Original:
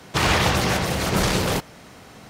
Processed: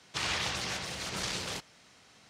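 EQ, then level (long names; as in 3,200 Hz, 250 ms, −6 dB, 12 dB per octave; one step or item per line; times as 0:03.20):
high-pass filter 48 Hz
high-frequency loss of the air 100 metres
first-order pre-emphasis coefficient 0.9
0.0 dB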